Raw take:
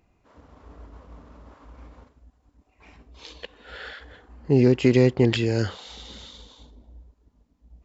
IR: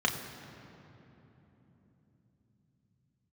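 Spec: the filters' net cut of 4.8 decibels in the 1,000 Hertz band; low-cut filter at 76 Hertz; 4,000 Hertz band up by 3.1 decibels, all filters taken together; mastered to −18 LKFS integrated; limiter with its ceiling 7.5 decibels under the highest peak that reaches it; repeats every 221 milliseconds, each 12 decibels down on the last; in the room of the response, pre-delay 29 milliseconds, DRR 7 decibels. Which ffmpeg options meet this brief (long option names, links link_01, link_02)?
-filter_complex "[0:a]highpass=76,equalizer=frequency=1000:width_type=o:gain=-7,equalizer=frequency=4000:width_type=o:gain=4.5,alimiter=limit=-13dB:level=0:latency=1,aecho=1:1:221|442|663:0.251|0.0628|0.0157,asplit=2[link_01][link_02];[1:a]atrim=start_sample=2205,adelay=29[link_03];[link_02][link_03]afir=irnorm=-1:irlink=0,volume=-17dB[link_04];[link_01][link_04]amix=inputs=2:normalize=0,volume=8dB"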